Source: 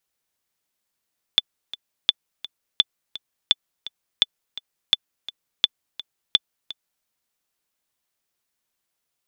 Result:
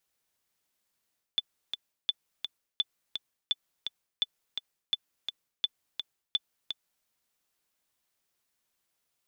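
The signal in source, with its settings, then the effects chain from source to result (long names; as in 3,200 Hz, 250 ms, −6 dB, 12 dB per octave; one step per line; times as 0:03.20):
click track 169 BPM, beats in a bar 2, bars 8, 3,490 Hz, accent 17.5 dB −2 dBFS
brickwall limiter −5.5 dBFS
reversed playback
downward compressor 4 to 1, threshold −29 dBFS
reversed playback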